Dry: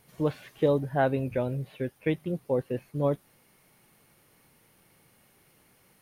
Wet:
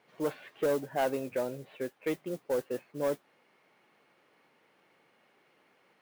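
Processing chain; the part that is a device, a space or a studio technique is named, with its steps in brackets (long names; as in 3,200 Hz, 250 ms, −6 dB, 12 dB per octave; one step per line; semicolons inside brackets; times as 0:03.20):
carbon microphone (band-pass filter 330–3,000 Hz; soft clipping −22.5 dBFS, distortion −13 dB; noise that follows the level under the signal 20 dB)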